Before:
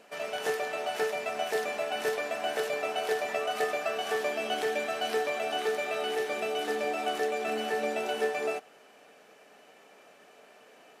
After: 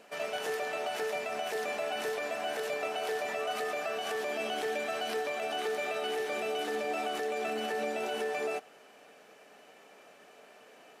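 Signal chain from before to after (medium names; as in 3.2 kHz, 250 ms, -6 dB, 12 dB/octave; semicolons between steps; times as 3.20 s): peak limiter -25 dBFS, peak gain reduction 8 dB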